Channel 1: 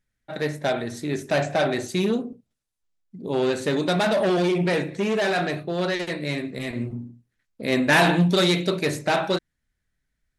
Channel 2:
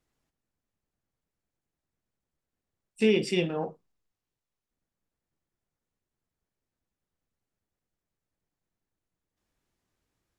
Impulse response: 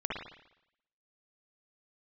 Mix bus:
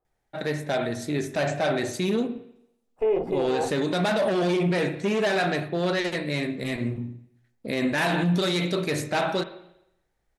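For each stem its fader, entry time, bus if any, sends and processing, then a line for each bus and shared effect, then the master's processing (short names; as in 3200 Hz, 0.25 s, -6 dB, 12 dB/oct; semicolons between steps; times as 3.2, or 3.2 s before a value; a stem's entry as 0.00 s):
-0.5 dB, 0.05 s, send -17 dB, dry
-3.0 dB, 0.00 s, no send, minimum comb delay 2.4 ms; EQ curve 280 Hz 0 dB, 680 Hz +15 dB, 5100 Hz -25 dB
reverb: on, RT60 0.85 s, pre-delay 53 ms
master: limiter -16 dBFS, peak gain reduction 9.5 dB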